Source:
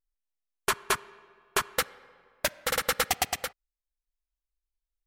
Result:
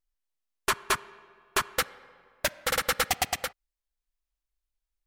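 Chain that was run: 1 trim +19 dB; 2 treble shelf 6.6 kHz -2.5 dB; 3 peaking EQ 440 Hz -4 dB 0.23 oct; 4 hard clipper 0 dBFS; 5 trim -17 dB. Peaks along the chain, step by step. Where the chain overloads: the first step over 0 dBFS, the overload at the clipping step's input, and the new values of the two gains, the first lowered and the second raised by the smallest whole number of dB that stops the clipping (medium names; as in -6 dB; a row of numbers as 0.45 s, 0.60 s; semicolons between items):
+9.5 dBFS, +9.5 dBFS, +9.0 dBFS, 0.0 dBFS, -17.0 dBFS; step 1, 9.0 dB; step 1 +10 dB, step 5 -8 dB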